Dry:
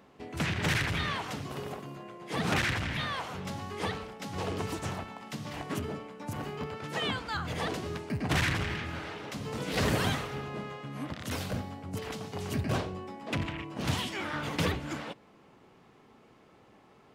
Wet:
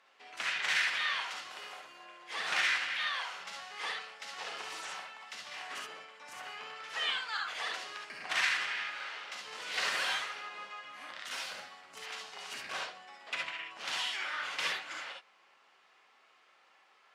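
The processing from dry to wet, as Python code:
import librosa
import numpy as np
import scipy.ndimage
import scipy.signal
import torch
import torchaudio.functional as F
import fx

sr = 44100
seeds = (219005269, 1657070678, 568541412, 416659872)

y = scipy.signal.sosfilt(scipy.signal.butter(2, 1300.0, 'highpass', fs=sr, output='sos'), x)
y = fx.air_absorb(y, sr, metres=57.0)
y = fx.rev_gated(y, sr, seeds[0], gate_ms=90, shape='rising', drr_db=0.0)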